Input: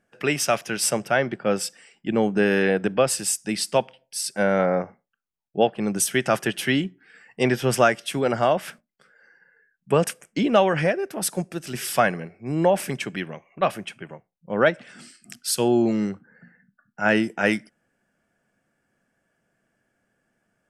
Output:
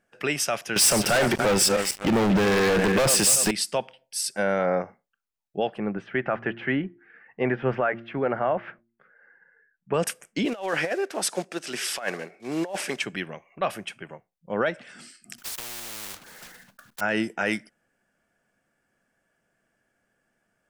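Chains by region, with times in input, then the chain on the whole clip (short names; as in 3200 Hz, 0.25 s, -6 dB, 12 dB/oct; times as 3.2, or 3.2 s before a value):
0.76–3.51 regenerating reverse delay 0.144 s, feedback 41%, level -13 dB + sample leveller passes 5
5.78–9.94 LPF 2100 Hz 24 dB/oct + de-hum 115.6 Hz, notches 3
10.45–13.03 block floating point 5-bit + BPF 300–7800 Hz + negative-ratio compressor -24 dBFS, ratio -0.5
15.38–17.01 block floating point 3-bit + compressor, threshold -27 dBFS + spectral compressor 4:1
whole clip: low shelf 240 Hz -10.5 dB; limiter -14.5 dBFS; low shelf 88 Hz +12 dB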